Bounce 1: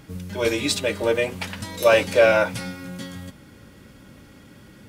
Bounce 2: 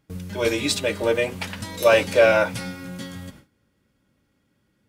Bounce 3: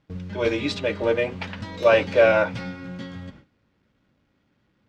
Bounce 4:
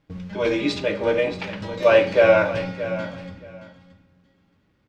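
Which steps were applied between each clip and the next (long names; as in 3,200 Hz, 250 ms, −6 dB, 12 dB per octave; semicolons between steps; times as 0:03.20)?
noise gate with hold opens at −34 dBFS
log-companded quantiser 6 bits; high-frequency loss of the air 190 metres
repeating echo 625 ms, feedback 18%, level −13 dB; rectangular room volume 36 cubic metres, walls mixed, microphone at 0.31 metres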